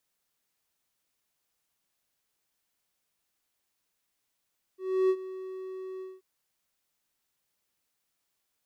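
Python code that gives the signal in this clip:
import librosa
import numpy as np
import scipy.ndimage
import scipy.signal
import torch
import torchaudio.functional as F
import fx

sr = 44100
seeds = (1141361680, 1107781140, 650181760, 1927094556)

y = fx.adsr_tone(sr, wave='triangle', hz=376.0, attack_ms=315.0, decay_ms=61.0, sustain_db=-16.5, held_s=1.23, release_ms=202.0, level_db=-18.0)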